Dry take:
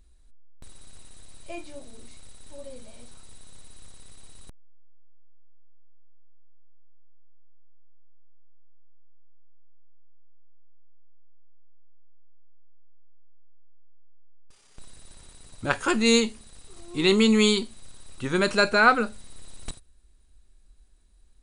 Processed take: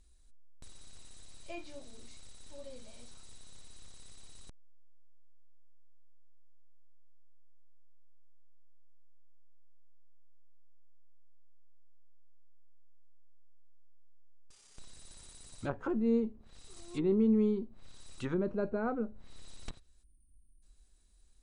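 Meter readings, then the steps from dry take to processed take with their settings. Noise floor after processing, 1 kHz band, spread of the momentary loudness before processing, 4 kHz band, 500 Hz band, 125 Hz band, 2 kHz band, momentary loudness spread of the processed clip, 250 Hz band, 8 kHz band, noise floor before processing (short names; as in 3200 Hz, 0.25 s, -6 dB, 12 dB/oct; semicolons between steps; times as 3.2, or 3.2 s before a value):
-62 dBFS, -18.5 dB, 22 LU, -25.5 dB, -9.0 dB, -6.5 dB, -24.5 dB, 24 LU, -6.5 dB, -17.5 dB, -56 dBFS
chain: bell 6900 Hz +7.5 dB 1.6 oct; treble ducked by the level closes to 470 Hz, closed at -22 dBFS; spectral delete 20.03–20.63, 360–8600 Hz; gain -6.5 dB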